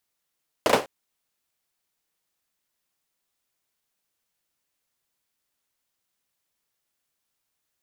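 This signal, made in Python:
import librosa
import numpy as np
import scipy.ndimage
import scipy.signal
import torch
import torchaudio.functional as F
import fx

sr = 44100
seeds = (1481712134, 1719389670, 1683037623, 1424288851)

y = fx.drum_clap(sr, seeds[0], length_s=0.2, bursts=3, spacing_ms=35, hz=500.0, decay_s=0.26)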